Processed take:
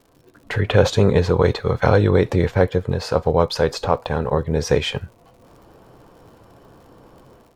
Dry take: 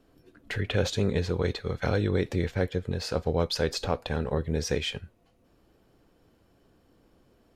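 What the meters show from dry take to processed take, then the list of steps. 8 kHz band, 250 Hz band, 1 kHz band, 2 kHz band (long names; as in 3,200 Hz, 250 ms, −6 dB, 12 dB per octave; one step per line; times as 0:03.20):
+4.5 dB, +8.5 dB, +13.0 dB, +8.5 dB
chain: octave-band graphic EQ 125/500/1,000 Hz +7/+5/+11 dB
automatic gain control gain up to 11 dB
surface crackle 100 per second −43 dBFS
level −1 dB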